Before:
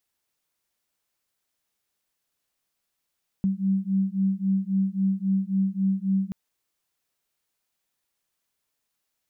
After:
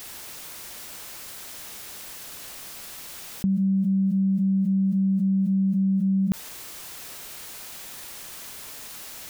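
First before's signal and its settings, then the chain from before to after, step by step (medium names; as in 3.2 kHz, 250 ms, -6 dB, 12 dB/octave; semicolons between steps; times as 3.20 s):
beating tones 191 Hz, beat 3.7 Hz, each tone -24.5 dBFS 2.88 s
level flattener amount 100%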